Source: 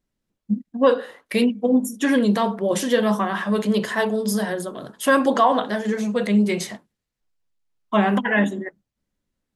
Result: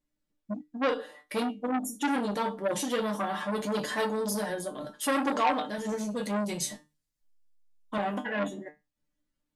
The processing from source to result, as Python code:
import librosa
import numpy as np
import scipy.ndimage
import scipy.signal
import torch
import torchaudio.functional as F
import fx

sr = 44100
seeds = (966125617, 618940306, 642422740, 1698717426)

y = fx.bass_treble(x, sr, bass_db=8, treble_db=9, at=(5.78, 7.98))
y = fx.comb_fb(y, sr, f0_hz=150.0, decay_s=0.2, harmonics='all', damping=0.0, mix_pct=90)
y = fx.dynamic_eq(y, sr, hz=1800.0, q=0.98, threshold_db=-50.0, ratio=4.0, max_db=-5)
y = y + 0.37 * np.pad(y, (int(3.5 * sr / 1000.0), 0))[:len(y)]
y = fx.rider(y, sr, range_db=10, speed_s=2.0)
y = fx.transformer_sat(y, sr, knee_hz=1600.0)
y = F.gain(torch.from_numpy(y), 3.5).numpy()